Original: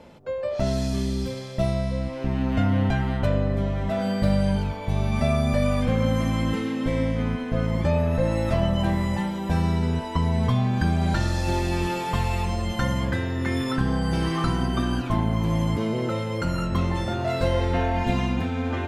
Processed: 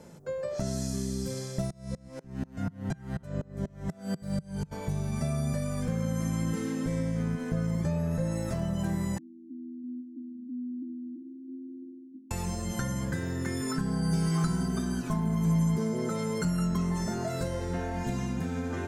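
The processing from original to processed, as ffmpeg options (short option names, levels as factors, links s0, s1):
-filter_complex "[0:a]asplit=3[s0][s1][s2];[s0]afade=t=out:st=1.67:d=0.02[s3];[s1]aeval=exprs='val(0)*pow(10,-32*if(lt(mod(-4.1*n/s,1),2*abs(-4.1)/1000),1-mod(-4.1*n/s,1)/(2*abs(-4.1)/1000),(mod(-4.1*n/s,1)-2*abs(-4.1)/1000)/(1-2*abs(-4.1)/1000))/20)':c=same,afade=t=in:st=1.67:d=0.02,afade=t=out:st=4.71:d=0.02[s4];[s2]afade=t=in:st=4.71:d=0.02[s5];[s3][s4][s5]amix=inputs=3:normalize=0,asettb=1/sr,asplit=3[s6][s7][s8];[s6]atrim=end=9.184[s9];[s7]atrim=start=9.18:end=12.31,asetpts=PTS-STARTPTS,afade=t=in:d=0.004:c=qsin,afade=t=out:st=3.126:d=0.004:c=qsin,asuperpass=centerf=280:order=8:qfactor=4[s10];[s8]atrim=start=12.306[s11];[s9][s10]acrossfade=d=0.004:c1=hsin:c2=qsin[s12];[s12][s11]acrossfade=d=0.004:c1=qsin:c2=hsin,asettb=1/sr,asplit=3[s13][s14][s15];[s13]atrim=end=13.614[s16];[s14]atrim=start=13.61:end=17.29,asetpts=PTS-STARTPTS,afade=t=in:d=0.004:c=qsin,afade=t=out:st=3.676:d=0.004:c=qsin,aecho=1:1:4.7:0.65,atrim=end_sample=162288[s17];[s15]atrim=start=17.286[s18];[s16][s17]acrossfade=d=0.004:c1=hsin:c2=qsin[s19];[s19][s18]acrossfade=d=0.004:c1=qsin:c2=hsin,highshelf=f=4700:t=q:w=1.5:g=13,acompressor=threshold=0.0562:ratio=6,equalizer=f=160:t=o:w=0.67:g=12,equalizer=f=400:t=o:w=0.67:g=6,equalizer=f=1600:t=o:w=0.67:g=6,volume=0.447"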